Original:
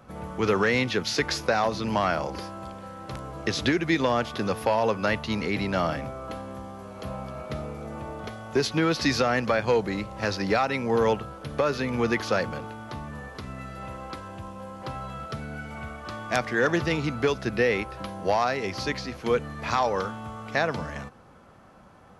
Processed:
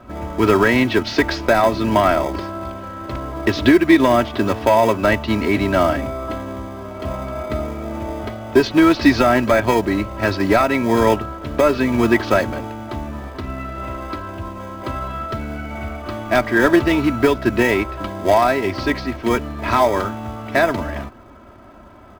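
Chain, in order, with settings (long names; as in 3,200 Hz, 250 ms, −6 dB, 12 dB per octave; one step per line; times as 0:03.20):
high-frequency loss of the air 220 metres
in parallel at −12 dB: sample-rate reduction 1,400 Hz, jitter 0%
on the sum: comb filter 3.1 ms, depth 71%
level +8 dB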